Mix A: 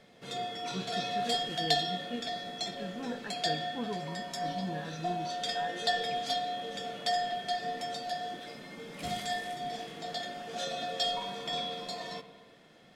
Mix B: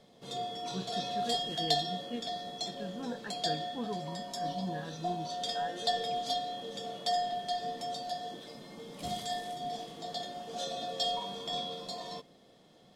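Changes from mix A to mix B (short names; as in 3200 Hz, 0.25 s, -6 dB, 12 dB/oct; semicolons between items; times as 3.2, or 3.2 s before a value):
background: add band shelf 1900 Hz -8.5 dB 1.2 oct; reverb: off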